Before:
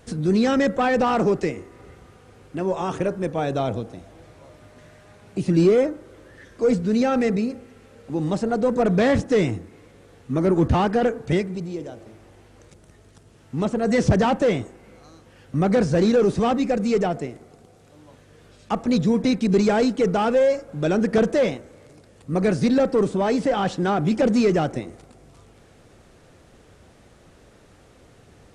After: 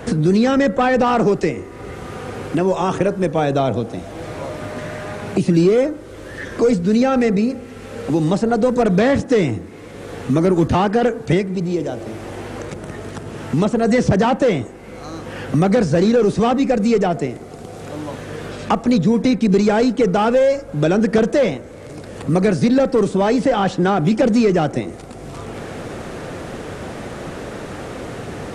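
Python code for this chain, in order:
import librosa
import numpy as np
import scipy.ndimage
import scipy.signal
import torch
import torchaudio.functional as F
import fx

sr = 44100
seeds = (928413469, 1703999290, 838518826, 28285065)

y = fx.band_squash(x, sr, depth_pct=70)
y = y * librosa.db_to_amplitude(4.5)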